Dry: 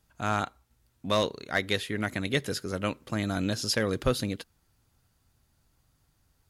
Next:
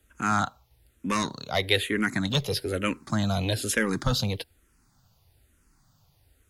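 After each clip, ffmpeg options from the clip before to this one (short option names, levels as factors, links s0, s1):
-filter_complex "[0:a]acrossover=split=150|1500|4300[s0][s1][s2][s3];[s1]asoftclip=type=tanh:threshold=0.0473[s4];[s0][s4][s2][s3]amix=inputs=4:normalize=0,asplit=2[s5][s6];[s6]afreqshift=-1.1[s7];[s5][s7]amix=inputs=2:normalize=1,volume=2.51"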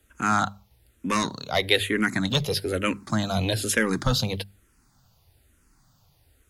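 -af "bandreject=f=50:t=h:w=6,bandreject=f=100:t=h:w=6,bandreject=f=150:t=h:w=6,bandreject=f=200:t=h:w=6,volume=1.33"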